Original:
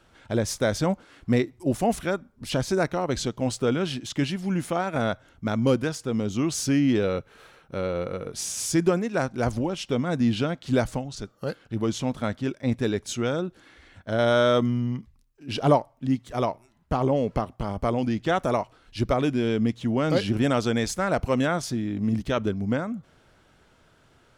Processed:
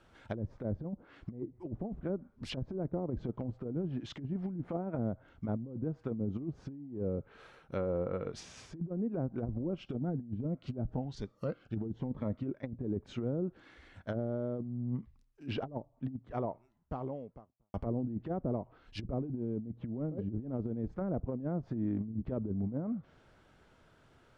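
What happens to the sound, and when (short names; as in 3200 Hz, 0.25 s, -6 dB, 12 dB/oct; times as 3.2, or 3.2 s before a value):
9.63–12.49 cascading phaser rising 1.1 Hz
15.73–17.74 studio fade out
whole clip: treble ducked by the level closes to 370 Hz, closed at -21.5 dBFS; high shelf 3500 Hz -7 dB; negative-ratio compressor -28 dBFS, ratio -0.5; gain -6.5 dB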